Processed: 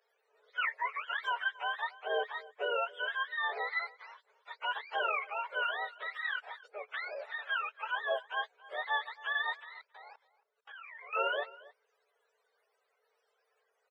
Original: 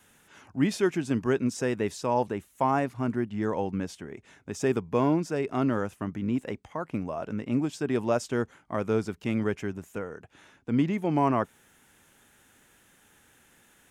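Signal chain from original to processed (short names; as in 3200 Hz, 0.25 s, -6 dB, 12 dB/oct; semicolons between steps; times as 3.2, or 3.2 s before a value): spectrum mirrored in octaves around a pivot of 620 Hz; dynamic EQ 2200 Hz, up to +6 dB, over -47 dBFS, Q 1.7; 9.59–11.13 level quantiser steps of 22 dB; rippled Chebyshev high-pass 420 Hz, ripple 3 dB; outdoor echo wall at 47 m, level -20 dB; gain -4.5 dB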